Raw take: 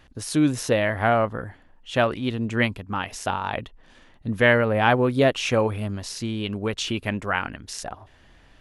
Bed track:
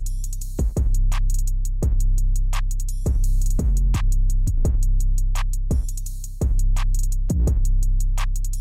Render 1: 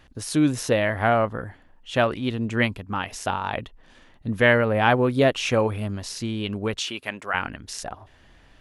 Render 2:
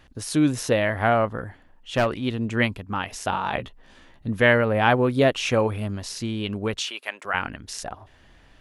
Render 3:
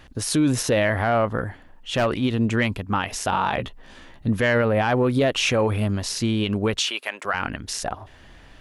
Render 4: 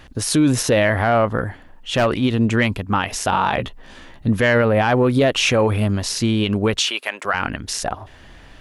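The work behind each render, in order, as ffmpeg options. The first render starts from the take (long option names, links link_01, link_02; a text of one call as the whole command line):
ffmpeg -i in.wav -filter_complex "[0:a]asettb=1/sr,asplit=3[link_01][link_02][link_03];[link_01]atrim=end=6.794[link_04];[link_02]atrim=start=6.79:end=7.34,asetpts=PTS-STARTPTS,afade=type=in:duration=0.004:curve=qsin,afade=type=out:start_time=0.546:duration=0.004:curve=qsin,highpass=frequency=730:poles=1[link_05];[link_03]atrim=start=7.336[link_06];[link_04][link_05]acrossfade=duration=0.004:curve1=hsin:curve2=qsin[link_07];[link_07][link_06]acrossfade=duration=0.004:curve1=qsin:curve2=hsin" out.wav
ffmpeg -i in.wav -filter_complex "[0:a]asettb=1/sr,asplit=3[link_01][link_02][link_03];[link_01]atrim=end=1.254[link_04];[link_02]atrim=start=1.25:end=2.06,asetpts=PTS-STARTPTS,afade=type=in:duration=0.004:curve=qsin,afade=type=out:start_time=0.806:duration=0.004:curve=qsin,aeval=exprs='clip(val(0),-1,0.119)':channel_layout=same[link_05];[link_03]atrim=start=2.056[link_06];[link_04][link_05]acrossfade=duration=0.004:curve1=hsin:curve2=qsin[link_07];[link_07][link_06]acrossfade=duration=0.004:curve1=qsin:curve2=hsin,asettb=1/sr,asplit=3[link_08][link_09][link_10];[link_08]atrim=end=3.314[link_11];[link_09]atrim=start=3.31:end=4.27,asetpts=PTS-STARTPTS,afade=type=in:duration=0.004:curve=qsin,afade=type=out:start_time=0.956:duration=0.004:curve=qsin,asplit=2[link_12][link_13];[link_13]adelay=15,volume=-4dB[link_14];[link_12][link_14]amix=inputs=2:normalize=0,atrim=end_sample=42336[link_15];[link_10]atrim=start=4.266[link_16];[link_11][link_15]acrossfade=duration=0.004:curve1=hsin:curve2=qsin[link_17];[link_17][link_16]acrossfade=duration=0.004:curve1=qsin:curve2=hsin,asettb=1/sr,asplit=3[link_18][link_19][link_20];[link_18]atrim=end=6.794[link_21];[link_19]atrim=start=6.79:end=7.25,asetpts=PTS-STARTPTS,afade=type=in:duration=0.004:curve=qsin,afade=type=out:start_time=0.456:duration=0.004:curve=qsin,highpass=530[link_22];[link_20]atrim=start=7.246[link_23];[link_21][link_22]acrossfade=duration=0.004:curve1=hsin:curve2=qsin[link_24];[link_24][link_23]acrossfade=duration=0.004:curve1=qsin:curve2=hsin" out.wav
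ffmpeg -i in.wav -af "acontrast=51,alimiter=limit=-12dB:level=0:latency=1:release=58" out.wav
ffmpeg -i in.wav -af "volume=4dB" out.wav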